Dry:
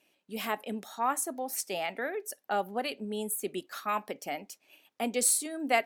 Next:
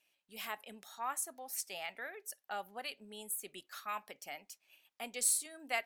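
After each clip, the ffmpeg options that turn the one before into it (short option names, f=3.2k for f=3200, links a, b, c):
-af "equalizer=f=280:w=0.48:g=-14,volume=-5dB"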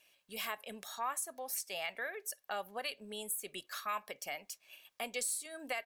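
-af "aecho=1:1:1.8:0.31,alimiter=level_in=4dB:limit=-24dB:level=0:latency=1:release=210,volume=-4dB,acompressor=threshold=-54dB:ratio=1.5,volume=8.5dB"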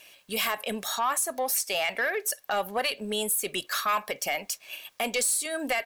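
-filter_complex "[0:a]asplit=2[a][b];[b]alimiter=level_in=10.5dB:limit=-24dB:level=0:latency=1:release=25,volume=-10.5dB,volume=2.5dB[c];[a][c]amix=inputs=2:normalize=0,asoftclip=type=tanh:threshold=-27dB,volume=8.5dB"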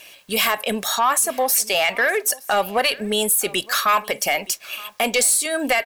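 -af "aecho=1:1:919:0.075,volume=8.5dB"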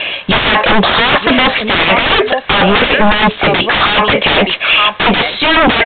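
-af "aresample=11025,acrusher=bits=6:mode=log:mix=0:aa=0.000001,aresample=44100,aeval=exprs='0.355*sin(PI/2*8.91*val(0)/0.355)':c=same,aresample=8000,aresample=44100,volume=4.5dB"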